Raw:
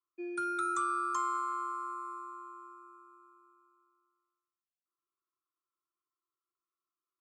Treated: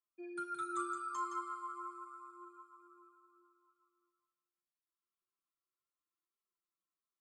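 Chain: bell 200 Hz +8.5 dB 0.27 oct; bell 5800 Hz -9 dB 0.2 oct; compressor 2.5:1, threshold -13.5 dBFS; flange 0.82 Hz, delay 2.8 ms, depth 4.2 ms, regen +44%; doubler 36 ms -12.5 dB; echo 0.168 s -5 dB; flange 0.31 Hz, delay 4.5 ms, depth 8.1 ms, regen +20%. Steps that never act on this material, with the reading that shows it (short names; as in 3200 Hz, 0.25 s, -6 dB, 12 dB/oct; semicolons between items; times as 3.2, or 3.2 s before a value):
compressor, threshold -13.5 dBFS: input peak -22.0 dBFS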